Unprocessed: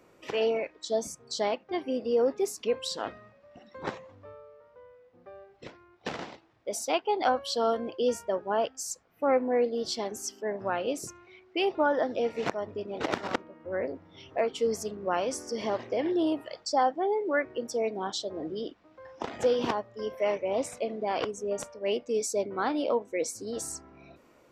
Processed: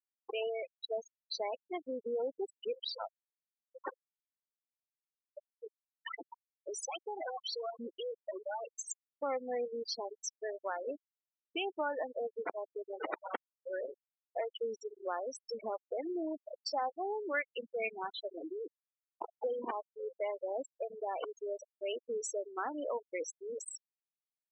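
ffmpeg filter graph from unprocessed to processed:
-filter_complex "[0:a]asettb=1/sr,asplit=3[a][b][c];[a]atrim=end=5.374[d];[b]atrim=start=5.37:end=8.77,asetpts=PTS-STARTPTS,afade=t=in:d=0.004:c=qsin,afade=t=out:st=3.396:d=0.004:c=qsin,aphaser=in_gain=1:out_gain=1:delay=3.3:decay=0.75:speed=1.2:type=triangular,acompressor=threshold=-30dB:ratio=4:attack=3.2:release=140:knee=1:detection=peak,volume=29.5dB,asoftclip=hard,volume=-29.5dB[e];[c]atrim=start=8.766[f];[d][e]acrossfade=d=0.004:c1=hsin:c2=qsin[g];[g][f]acrossfade=d=0.004:c1=qsin:c2=hsin,asettb=1/sr,asplit=3[h][i][j];[h]atrim=end=17.344[k];[i]atrim=start=17.34:end=18.31,asetpts=PTS-STARTPTS,afade=t=in:d=0.004:c=qsin,afade=t=out:st=0.966:d=0.004:c=qsin,lowpass=f=2.5k:t=q:w=6.2,equalizer=f=170:w=3.9:g=12[l];[j]atrim=start=18.306[m];[k][l]acrossfade=d=0.004:c1=hsin:c2=qsin[n];[n][m]acrossfade=d=0.004:c1=qsin:c2=hsin,highpass=f=680:p=1,afftfilt=real='re*gte(hypot(re,im),0.0501)':imag='im*gte(hypot(re,im),0.0501)':win_size=1024:overlap=0.75,acompressor=threshold=-45dB:ratio=2,volume=4dB"

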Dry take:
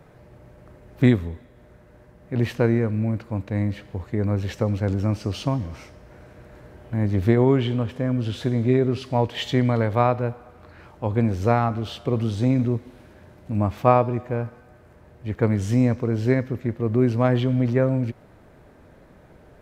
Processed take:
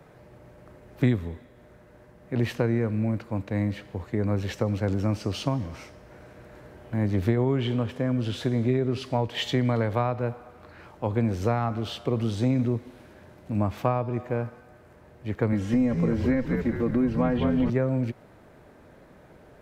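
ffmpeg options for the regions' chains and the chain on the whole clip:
-filter_complex "[0:a]asettb=1/sr,asplit=3[a][b][c];[a]atrim=end=15.524[d];[b]atrim=start=15.52:end=17.7,asetpts=PTS-STARTPTS,afade=t=in:d=0.004:c=qsin,afade=t=out:st=2.176:d=0.004:c=qsin,acrossover=split=3000[e][f];[f]acompressor=threshold=-53dB:ratio=4:attack=1:release=60[g];[e][g]amix=inputs=2:normalize=0,aecho=1:1:3.7:0.82,atrim=end_sample=96138,asplit=8[h][i][j][k][l][m][n][o];[i]adelay=207,afreqshift=-83,volume=-7dB[p];[j]adelay=414,afreqshift=-166,volume=-12dB[q];[k]adelay=621,afreqshift=-249,volume=-17.1dB[r];[l]adelay=828,afreqshift=-332,volume=-22.1dB[s];[m]adelay=1035,afreqshift=-415,volume=-27.1dB[t];[n]adelay=1242,afreqshift=-498,volume=-32.2dB[u];[o]adelay=1449,afreqshift=-581,volume=-37.2dB[v];[h][p][q][r][s][t][u][v]amix=inputs=8:normalize=0,atrim=end_sample=96138[w];[c]atrim=start=17.696[x];[d][w]acrossfade=d=0.004:c1=hsin:c2=qsin[y];[y][x]acrossfade=d=0.004:c1=qsin:c2=hsin,lowshelf=f=110:g=-7,acrossover=split=150[z][aa];[aa]acompressor=threshold=-22dB:ratio=6[ab];[z][ab]amix=inputs=2:normalize=0"

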